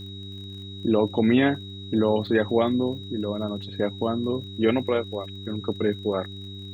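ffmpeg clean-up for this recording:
ffmpeg -i in.wav -af "adeclick=threshold=4,bandreject=frequency=98.2:width_type=h:width=4,bandreject=frequency=196.4:width_type=h:width=4,bandreject=frequency=294.6:width_type=h:width=4,bandreject=frequency=392.8:width_type=h:width=4,bandreject=frequency=3800:width=30,agate=range=-21dB:threshold=-30dB" out.wav

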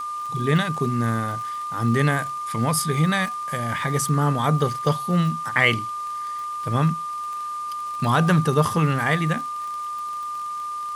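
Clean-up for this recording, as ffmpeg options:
ffmpeg -i in.wav -af "adeclick=threshold=4,bandreject=frequency=1200:width=30,afwtdn=0.0045" out.wav

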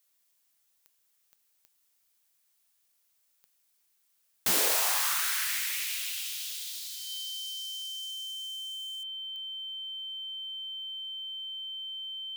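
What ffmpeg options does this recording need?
ffmpeg -i in.wav -af "adeclick=threshold=4,bandreject=frequency=3100:width=30,agate=range=-21dB:threshold=-64dB" out.wav

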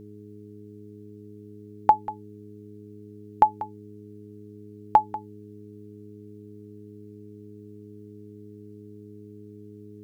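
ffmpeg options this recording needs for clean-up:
ffmpeg -i in.wav -af "bandreject=frequency=104.2:width_type=h:width=4,bandreject=frequency=208.4:width_type=h:width=4,bandreject=frequency=312.6:width_type=h:width=4,bandreject=frequency=416.8:width_type=h:width=4" out.wav

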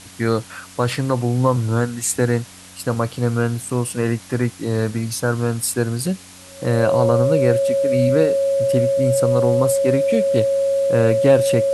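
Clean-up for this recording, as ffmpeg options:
ffmpeg -i in.wav -af "bandreject=frequency=91.9:width_type=h:width=4,bandreject=frequency=183.8:width_type=h:width=4,bandreject=frequency=275.7:width_type=h:width=4,bandreject=frequency=550:width=30,afftdn=noise_reduction=23:noise_floor=-41" out.wav

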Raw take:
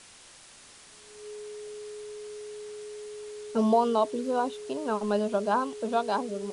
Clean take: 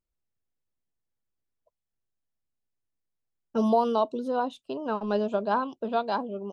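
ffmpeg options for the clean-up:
ffmpeg -i in.wav -af "bandreject=frequency=420:width=30,afwtdn=0.0035" out.wav

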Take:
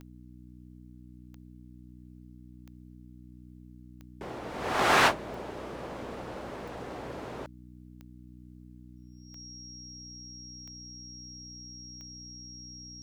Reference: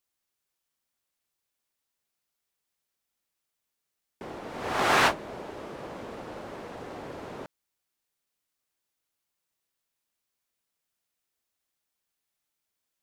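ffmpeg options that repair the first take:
ffmpeg -i in.wav -af "adeclick=threshold=4,bandreject=frequency=61.4:width_type=h:width=4,bandreject=frequency=122.8:width_type=h:width=4,bandreject=frequency=184.2:width_type=h:width=4,bandreject=frequency=245.6:width_type=h:width=4,bandreject=frequency=307:width_type=h:width=4,bandreject=frequency=5600:width=30" out.wav

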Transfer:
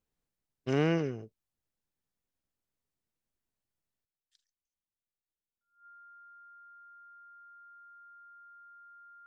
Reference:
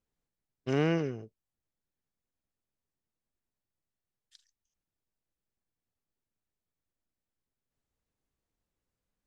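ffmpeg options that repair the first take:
ffmpeg -i in.wav -af "bandreject=frequency=1400:width=30,asetnsamples=nb_out_samples=441:pad=0,asendcmd='4.05 volume volume 11.5dB',volume=0dB" out.wav

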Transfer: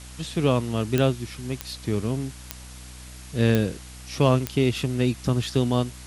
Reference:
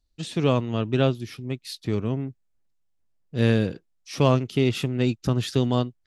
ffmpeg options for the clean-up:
ffmpeg -i in.wav -af "adeclick=threshold=4,bandreject=frequency=62.3:width_type=h:width=4,bandreject=frequency=124.6:width_type=h:width=4,bandreject=frequency=186.9:width_type=h:width=4,bandreject=frequency=249.2:width_type=h:width=4,bandreject=frequency=311.5:width_type=h:width=4,afwtdn=0.0063" out.wav

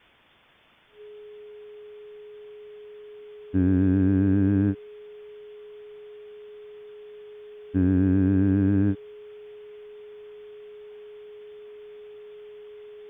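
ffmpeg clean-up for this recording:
ffmpeg -i in.wav -af "bandreject=frequency=420:width=30,afwtdn=0.0022" out.wav

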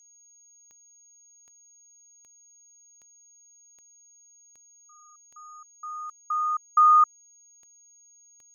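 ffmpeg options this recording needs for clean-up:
ffmpeg -i in.wav -af "adeclick=threshold=4,bandreject=frequency=6600:width=30" out.wav

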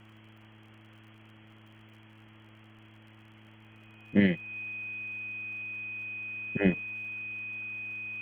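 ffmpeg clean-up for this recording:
ffmpeg -i in.wav -af "adeclick=threshold=4,bandreject=frequency=108.6:width_type=h:width=4,bandreject=frequency=217.2:width_type=h:width=4,bandreject=frequency=325.8:width_type=h:width=4,bandreject=frequency=2500:width=30,afwtdn=0.0025" out.wav

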